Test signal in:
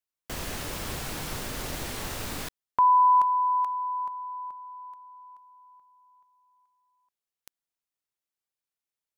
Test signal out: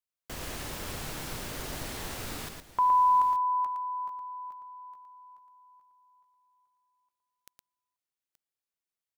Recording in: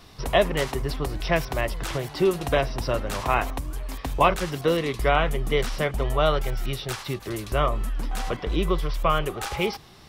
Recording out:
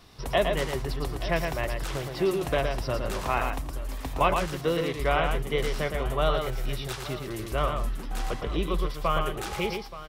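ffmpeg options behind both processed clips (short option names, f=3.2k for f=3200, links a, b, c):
-af "aecho=1:1:115|876:0.562|0.178,volume=-4.5dB"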